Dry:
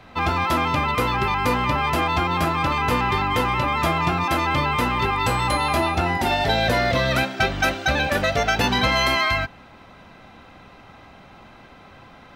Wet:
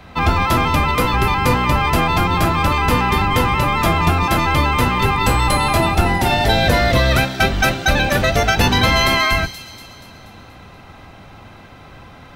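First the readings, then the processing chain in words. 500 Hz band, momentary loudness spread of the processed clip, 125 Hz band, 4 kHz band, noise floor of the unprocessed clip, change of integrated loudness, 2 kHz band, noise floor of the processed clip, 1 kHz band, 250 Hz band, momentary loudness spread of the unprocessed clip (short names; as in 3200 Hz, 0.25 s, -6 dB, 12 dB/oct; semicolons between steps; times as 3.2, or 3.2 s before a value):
+4.5 dB, 2 LU, +8.0 dB, +5.0 dB, -47 dBFS, +5.0 dB, +4.5 dB, -41 dBFS, +4.0 dB, +5.5 dB, 3 LU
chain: octaver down 1 oct, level +2 dB; high shelf 8300 Hz +6 dB; on a send: thin delay 0.239 s, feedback 53%, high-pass 5200 Hz, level -5.5 dB; on the sum: gain +4 dB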